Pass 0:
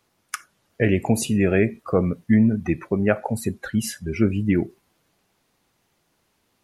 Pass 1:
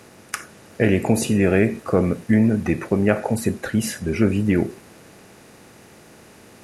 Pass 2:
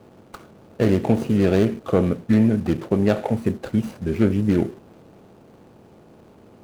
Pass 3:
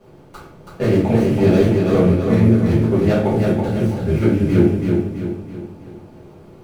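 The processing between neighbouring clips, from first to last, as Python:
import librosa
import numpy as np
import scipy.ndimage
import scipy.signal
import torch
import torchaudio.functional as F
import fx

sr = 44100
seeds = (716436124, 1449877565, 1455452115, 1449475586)

y1 = fx.bin_compress(x, sr, power=0.6)
y1 = y1 * librosa.db_to_amplitude(-1.0)
y2 = scipy.signal.medfilt(y1, 25)
y3 = fx.echo_feedback(y2, sr, ms=328, feedback_pct=46, wet_db=-4)
y3 = fx.room_shoebox(y3, sr, seeds[0], volume_m3=54.0, walls='mixed', distance_m=1.8)
y3 = y3 * librosa.db_to_amplitude(-6.5)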